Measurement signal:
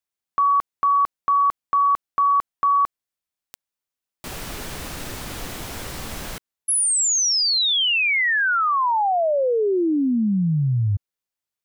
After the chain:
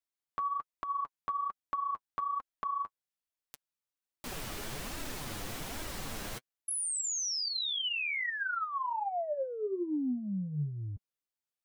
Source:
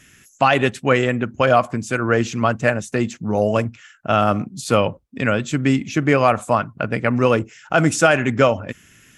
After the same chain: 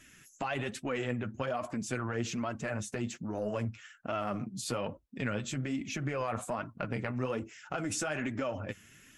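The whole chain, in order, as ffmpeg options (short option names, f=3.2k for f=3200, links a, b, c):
-af "acompressor=threshold=-27dB:ratio=12:attack=15:release=20:knee=6:detection=rms,flanger=delay=3:depth=6.9:regen=27:speed=1.2:shape=sinusoidal,volume=-3.5dB"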